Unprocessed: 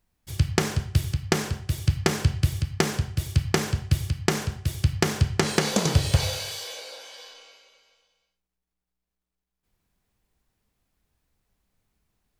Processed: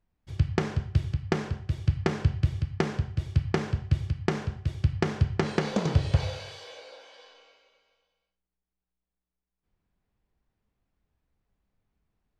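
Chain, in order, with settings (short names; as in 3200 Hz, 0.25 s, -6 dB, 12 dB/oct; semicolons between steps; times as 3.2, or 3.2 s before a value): tape spacing loss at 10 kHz 23 dB; gain -2 dB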